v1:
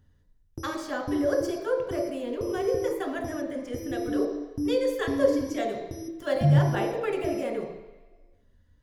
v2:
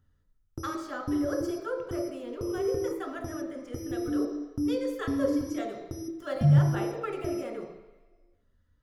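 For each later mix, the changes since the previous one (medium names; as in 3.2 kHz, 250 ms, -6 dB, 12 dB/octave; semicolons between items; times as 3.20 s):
speech -7.0 dB; master: add peaking EQ 1.3 kHz +12.5 dB 0.21 oct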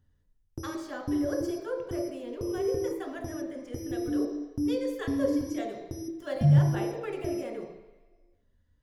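master: add peaking EQ 1.3 kHz -12.5 dB 0.21 oct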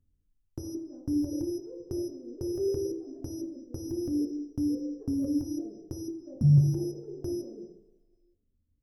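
speech: add four-pole ladder low-pass 420 Hz, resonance 30%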